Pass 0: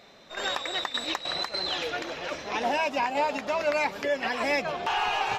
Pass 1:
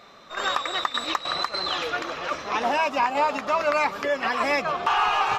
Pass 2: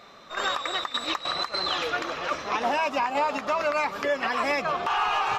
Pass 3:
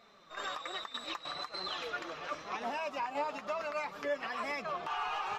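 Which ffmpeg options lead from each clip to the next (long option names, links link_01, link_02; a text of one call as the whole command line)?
ffmpeg -i in.wav -af "equalizer=frequency=1200:width=3.4:gain=12,volume=1.5dB" out.wav
ffmpeg -i in.wav -af "alimiter=limit=-16dB:level=0:latency=1:release=106" out.wav
ffmpeg -i in.wav -af "flanger=delay=4.4:depth=2.5:regen=46:speed=1.1:shape=sinusoidal,volume=-7.5dB" out.wav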